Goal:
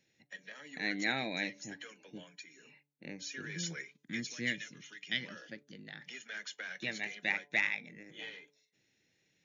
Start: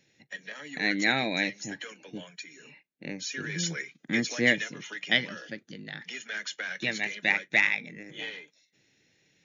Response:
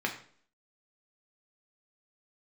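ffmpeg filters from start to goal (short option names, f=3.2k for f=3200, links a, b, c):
-filter_complex "[0:a]asplit=3[a][b][c];[a]afade=t=out:st=3.97:d=0.02[d];[b]equalizer=f=700:t=o:w=1.8:g=-14,afade=t=in:st=3.97:d=0.02,afade=t=out:st=5.2:d=0.02[e];[c]afade=t=in:st=5.2:d=0.02[f];[d][e][f]amix=inputs=3:normalize=0,bandreject=f=144.2:t=h:w=4,bandreject=f=288.4:t=h:w=4,bandreject=f=432.6:t=h:w=4,bandreject=f=576.8:t=h:w=4,bandreject=f=721:t=h:w=4,bandreject=f=865.2:t=h:w=4,bandreject=f=1.0094k:t=h:w=4,volume=-8dB"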